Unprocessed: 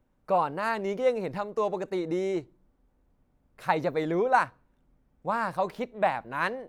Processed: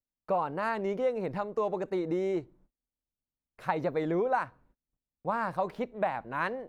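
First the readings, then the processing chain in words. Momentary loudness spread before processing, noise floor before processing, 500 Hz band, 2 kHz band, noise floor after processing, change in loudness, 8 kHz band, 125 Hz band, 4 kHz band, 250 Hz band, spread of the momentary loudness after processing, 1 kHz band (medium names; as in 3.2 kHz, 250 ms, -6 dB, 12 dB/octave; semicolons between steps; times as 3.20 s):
7 LU, -70 dBFS, -2.5 dB, -5.0 dB, under -85 dBFS, -3.0 dB, no reading, -1.0 dB, -7.0 dB, -1.5 dB, 5 LU, -4.5 dB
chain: treble shelf 3.1 kHz -8.5 dB; gate -59 dBFS, range -29 dB; compression 4:1, threshold -25 dBFS, peak gain reduction 7 dB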